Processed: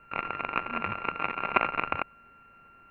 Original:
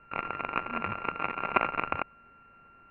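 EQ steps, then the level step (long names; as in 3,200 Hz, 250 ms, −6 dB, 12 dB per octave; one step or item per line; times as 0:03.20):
high-shelf EQ 3,800 Hz +9.5 dB
0.0 dB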